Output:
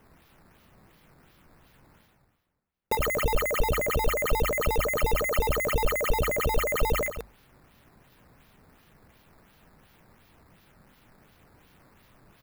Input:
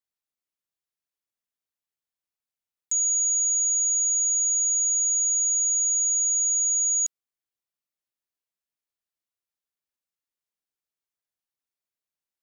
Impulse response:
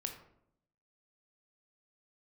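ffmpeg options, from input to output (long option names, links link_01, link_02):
-filter_complex "[0:a]asplit=2[link_01][link_02];[link_02]adelay=35,volume=-5.5dB[link_03];[link_01][link_03]amix=inputs=2:normalize=0,aecho=1:1:108:0.299,acrusher=samples=10:mix=1:aa=0.000001:lfo=1:lforange=10:lforate=2.8,bass=frequency=250:gain=11,treble=frequency=4000:gain=6,areverse,acompressor=mode=upward:threshold=-32dB:ratio=2.5,areverse,equalizer=frequency=6500:width=0.68:gain=-11,bandreject=frequency=50:width_type=h:width=6,bandreject=frequency=100:width_type=h:width=6"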